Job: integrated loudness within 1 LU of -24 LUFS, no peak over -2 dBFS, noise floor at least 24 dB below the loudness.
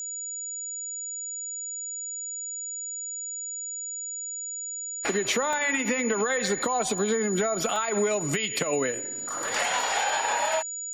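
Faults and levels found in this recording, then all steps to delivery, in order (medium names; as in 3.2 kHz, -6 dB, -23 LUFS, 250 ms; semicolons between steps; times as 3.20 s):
dropouts 3; longest dropout 2.0 ms; steady tone 6.9 kHz; tone level -32 dBFS; loudness -27.5 LUFS; peak level -13.5 dBFS; loudness target -24.0 LUFS
-> interpolate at 5.53/6.98/7.76 s, 2 ms; band-stop 6.9 kHz, Q 30; trim +3.5 dB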